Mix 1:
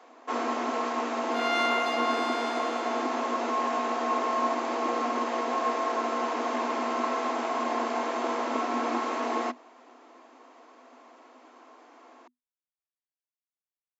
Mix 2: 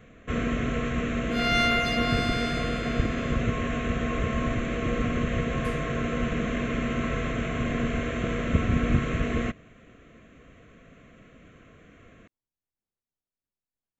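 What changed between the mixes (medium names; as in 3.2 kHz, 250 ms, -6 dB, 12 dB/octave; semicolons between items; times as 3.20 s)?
speech: remove band-pass filter 2 kHz, Q 0.91; first sound: add static phaser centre 2.1 kHz, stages 4; master: remove rippled Chebyshev high-pass 240 Hz, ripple 6 dB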